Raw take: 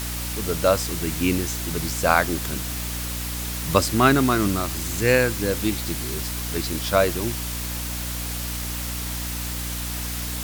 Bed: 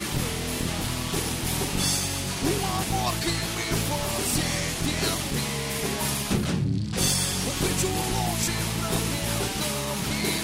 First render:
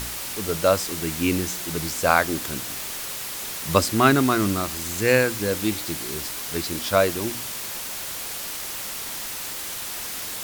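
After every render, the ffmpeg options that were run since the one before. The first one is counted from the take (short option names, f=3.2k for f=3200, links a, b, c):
-af "bandreject=f=60:t=h:w=4,bandreject=f=120:t=h:w=4,bandreject=f=180:t=h:w=4,bandreject=f=240:t=h:w=4,bandreject=f=300:t=h:w=4"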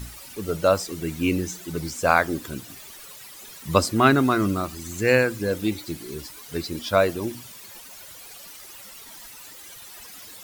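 -af "afftdn=nr=14:nf=-32"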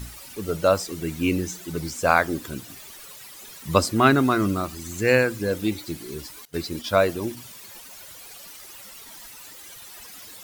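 -filter_complex "[0:a]asettb=1/sr,asplit=3[a][b][c];[a]atrim=end=6.454[d];[b]atrim=start=6.45:end=7.37,asetpts=PTS-STARTPTS,afade=t=in:d=0.004:c=qsin,afade=t=out:st=0.916:d=0.004:c=qsin,agate=range=-19dB:threshold=-38dB:ratio=16:release=100:detection=peak[e];[c]atrim=start=7.366[f];[d][e]acrossfade=d=0.004:c1=hsin:c2=qsin[g];[g][f]acrossfade=d=0.004:c1=qsin:c2=hsin"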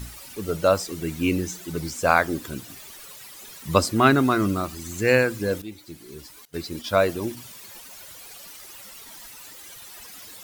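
-filter_complex "[0:a]asplit=2[a][b];[a]atrim=end=5.62,asetpts=PTS-STARTPTS,afade=t=out:st=5.616:d=0.004:c=hsin:silence=0.199526[c];[b]atrim=start=5.62,asetpts=PTS-STARTPTS,afade=t=in:d=1.49:silence=0.199526[d];[c][d]concat=n=2:v=0:a=1"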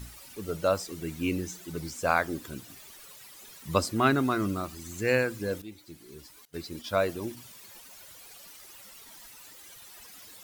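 -af "volume=-6.5dB"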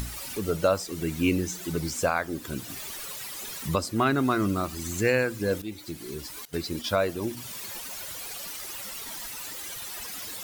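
-filter_complex "[0:a]asplit=2[a][b];[b]acompressor=mode=upward:threshold=-28dB:ratio=2.5,volume=-1dB[c];[a][c]amix=inputs=2:normalize=0,alimiter=limit=-12dB:level=0:latency=1:release=418"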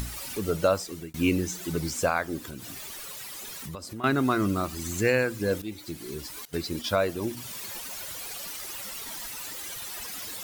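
-filter_complex "[0:a]asettb=1/sr,asplit=3[a][b][c];[a]atrim=end=2.404[d];[b]atrim=start=2.4:end=4.04,asetpts=PTS-STARTPTS,afade=t=in:d=0.004:c=qsin,afade=t=out:st=1.636:d=0.004:c=qsin,acompressor=threshold=-35dB:ratio=6:attack=3.2:release=140:knee=1:detection=peak[e];[c]atrim=start=4.036[f];[d][e]acrossfade=d=0.004:c1=hsin:c2=qsin[g];[g][f]acrossfade=d=0.004:c1=qsin:c2=hsin,asplit=2[h][i];[h]atrim=end=1.14,asetpts=PTS-STARTPTS,afade=t=out:st=0.71:d=0.43:c=qsin[j];[i]atrim=start=1.14,asetpts=PTS-STARTPTS,afade=t=in:d=0.004:c=hsin[k];[j][k]concat=n=2:v=0:a=1"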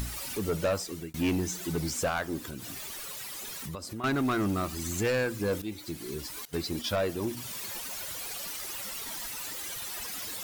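-af "asoftclip=type=tanh:threshold=-22.5dB"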